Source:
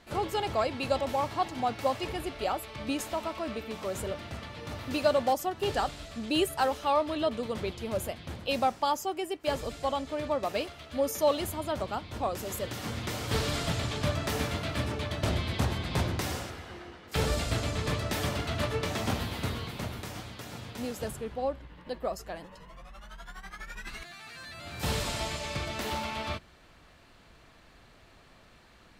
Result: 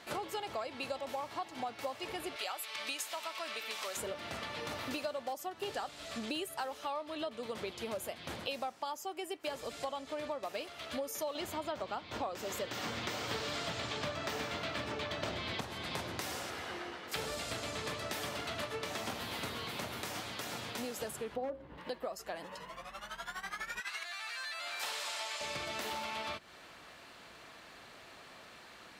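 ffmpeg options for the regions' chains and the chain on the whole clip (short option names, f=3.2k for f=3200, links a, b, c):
-filter_complex "[0:a]asettb=1/sr,asplit=3[a][b][c];[a]atrim=end=2.364[d];[b]atrim=start=2.36:end=3.97,asetpts=PTS-STARTPTS,afade=t=in:d=0.004:c=qsin,afade=t=out:st=1.606:d=0.004:c=qsin,bandpass=f=2.2k:t=q:w=0.53,aemphasis=mode=production:type=75fm[e];[c]atrim=start=3.966[f];[d][e]acrossfade=d=0.004:c1=hsin:c2=qsin[g];[g][f]acrossfade=d=0.004:c1=qsin:c2=hsin,asettb=1/sr,asplit=3[h][i][j];[h]atrim=end=11.354[k];[i]atrim=start=11.35:end=15.61,asetpts=PTS-STARTPTS,afade=t=in:d=0.004:c=qsin,afade=t=out:st=4.256:d=0.004:c=qsin,acontrast=81,equalizer=f=11k:t=o:w=0.65:g=-15[l];[j]atrim=start=15.606[m];[k][l]acrossfade=d=0.004:c1=hsin:c2=qsin[n];[n][m]acrossfade=d=0.004:c1=qsin:c2=hsin,asettb=1/sr,asplit=3[o][p][q];[o]atrim=end=21.364[r];[p]atrim=start=21.36:end=21.78,asetpts=PTS-STARTPTS,afade=t=in:d=0.004:c=qsin,afade=t=out:st=0.416:d=0.004:c=qsin,aeval=exprs='0.0531*(abs(mod(val(0)/0.0531+3,4)-2)-1)':c=same,tiltshelf=f=1.1k:g=9.5,bandreject=f=60:t=h:w=6,bandreject=f=120:t=h:w=6,bandreject=f=180:t=h:w=6,bandreject=f=240:t=h:w=6,bandreject=f=300:t=h:w=6,bandreject=f=360:t=h:w=6,bandreject=f=420:t=h:w=6,bandreject=f=480:t=h:w=6,bandreject=f=540:t=h:w=6[s];[q]atrim=start=21.776[t];[r][s]acrossfade=d=0.004:c1=hsin:c2=qsin[u];[u][t]acrossfade=d=0.004:c1=qsin:c2=hsin,asettb=1/sr,asplit=3[v][w][x];[v]atrim=end=23.804[y];[w]atrim=start=23.8:end=25.41,asetpts=PTS-STARTPTS,afade=t=in:d=0.004:c=qsin,afade=t=out:st=1.606:d=0.004:c=qsin,highpass=760,highshelf=f=11k:g=-7[z];[x]atrim=start=25.406[aa];[y][z]acrossfade=d=0.004:c1=hsin:c2=qsin[ab];[ab][aa]acrossfade=d=0.004:c1=qsin:c2=hsin,highpass=f=450:p=1,acompressor=threshold=-43dB:ratio=6,volume=6dB"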